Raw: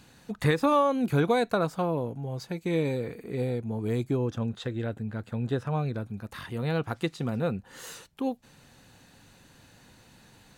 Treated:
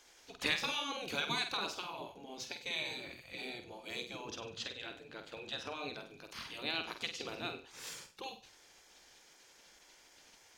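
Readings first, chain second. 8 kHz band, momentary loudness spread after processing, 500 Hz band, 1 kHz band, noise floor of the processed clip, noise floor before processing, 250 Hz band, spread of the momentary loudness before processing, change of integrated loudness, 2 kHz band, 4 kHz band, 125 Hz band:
0.0 dB, 25 LU, -17.5 dB, -12.0 dB, -63 dBFS, -57 dBFS, -19.5 dB, 13 LU, -10.5 dB, -2.0 dB, +4.5 dB, -26.0 dB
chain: band shelf 3900 Hz +13 dB; flutter echo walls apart 8.3 m, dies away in 0.37 s; spectral gate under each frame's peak -10 dB weak; gain -6.5 dB

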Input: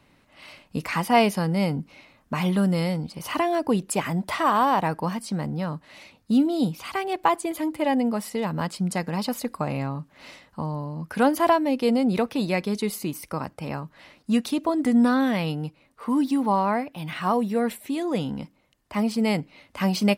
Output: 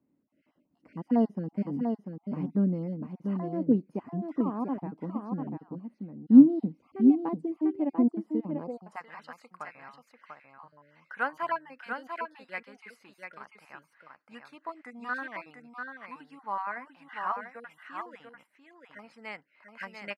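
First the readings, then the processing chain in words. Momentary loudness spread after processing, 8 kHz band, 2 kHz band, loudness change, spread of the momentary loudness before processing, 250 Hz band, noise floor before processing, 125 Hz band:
21 LU, under -30 dB, -7.5 dB, -3.5 dB, 12 LU, -3.5 dB, -62 dBFS, -10.0 dB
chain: random spectral dropouts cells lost 25%; on a send: echo 0.693 s -4 dB; on the sum: band-pass sweep 270 Hz -> 1600 Hz, 8.51–9.08; bell 3600 Hz -8.5 dB 0.27 oct; upward expander 1.5:1, over -45 dBFS; gain +7 dB

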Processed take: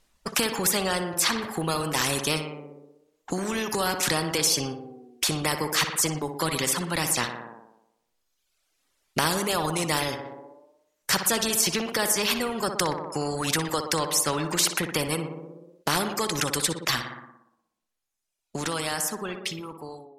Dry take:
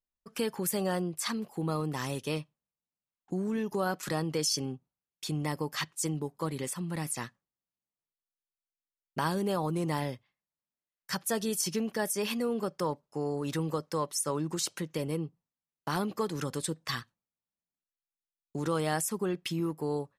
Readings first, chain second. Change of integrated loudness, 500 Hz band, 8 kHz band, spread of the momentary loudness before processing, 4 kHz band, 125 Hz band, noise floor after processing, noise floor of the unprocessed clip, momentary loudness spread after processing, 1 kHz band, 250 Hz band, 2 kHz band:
+7.5 dB, +3.5 dB, +10.5 dB, 7 LU, +12.0 dB, +2.0 dB, -77 dBFS, under -85 dBFS, 13 LU, +7.5 dB, +2.0 dB, +11.0 dB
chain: ending faded out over 4.81 s; reverb removal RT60 1.2 s; in parallel at +1 dB: compressor, threshold -41 dBFS, peak gain reduction 14.5 dB; on the sum: Bessel low-pass 9300 Hz, order 2; on a send: tape echo 60 ms, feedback 67%, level -11 dB, low-pass 1900 Hz; on the sum: spectral compressor 2:1; gain +7.5 dB

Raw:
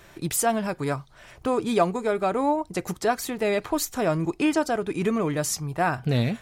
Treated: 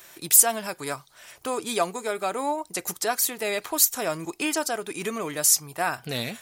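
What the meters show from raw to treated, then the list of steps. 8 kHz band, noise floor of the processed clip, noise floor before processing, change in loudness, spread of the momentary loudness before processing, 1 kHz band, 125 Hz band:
+10.0 dB, -55 dBFS, -51 dBFS, +1.5 dB, 4 LU, -2.5 dB, -12.5 dB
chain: RIAA curve recording; gain -2 dB

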